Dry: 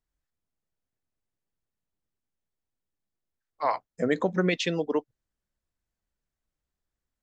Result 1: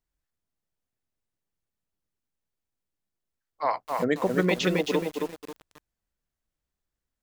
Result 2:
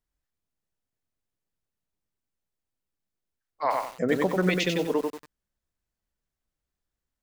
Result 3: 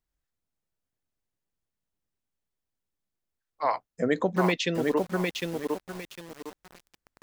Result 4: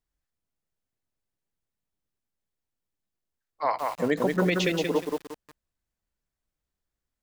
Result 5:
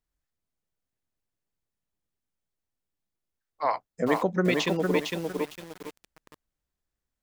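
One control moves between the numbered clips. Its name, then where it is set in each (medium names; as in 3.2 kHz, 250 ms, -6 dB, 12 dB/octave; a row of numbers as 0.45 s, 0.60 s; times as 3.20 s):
bit-crushed delay, time: 269 ms, 93 ms, 755 ms, 178 ms, 456 ms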